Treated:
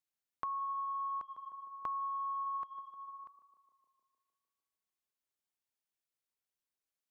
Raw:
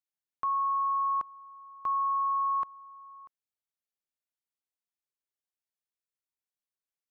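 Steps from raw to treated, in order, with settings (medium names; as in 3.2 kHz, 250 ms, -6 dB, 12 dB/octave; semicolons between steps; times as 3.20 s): on a send: tape echo 151 ms, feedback 83%, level -14 dB, low-pass 1.2 kHz; on the sum: compression, threshold -37 dBFS, peak gain reduction 10 dB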